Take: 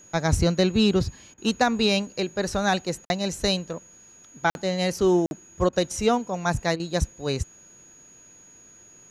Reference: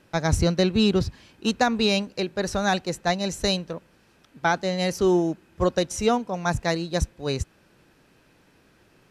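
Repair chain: notch 6700 Hz, Q 30; interpolate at 3.05/4.5/5.26, 51 ms; interpolate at 1.34/3.05/5.69/6.76, 37 ms

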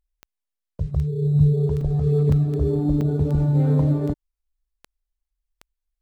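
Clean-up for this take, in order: de-click; interpolate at 1.81/2.32/3.01, 3.7 ms

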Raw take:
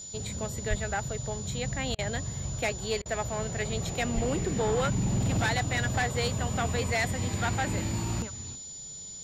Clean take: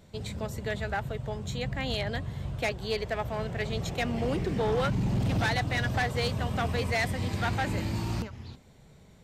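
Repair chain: notch 7000 Hz, Q 30; 0.69–0.81 HPF 140 Hz 24 dB/oct; 4.14–4.26 HPF 140 Hz 24 dB/oct; interpolate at 1.95/3.02, 35 ms; noise print and reduce 6 dB

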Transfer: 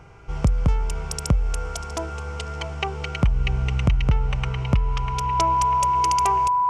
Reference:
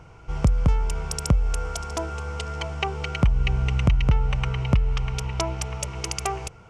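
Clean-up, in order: de-hum 400.4 Hz, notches 6; notch 990 Hz, Q 30

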